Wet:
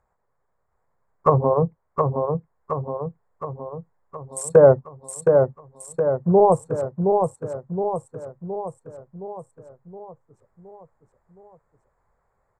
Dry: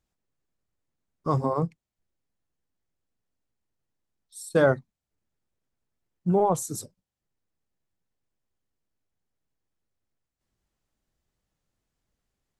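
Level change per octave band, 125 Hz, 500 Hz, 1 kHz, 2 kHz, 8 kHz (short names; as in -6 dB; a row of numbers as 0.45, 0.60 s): +7.0, +11.0, +8.0, -3.5, +3.5 dB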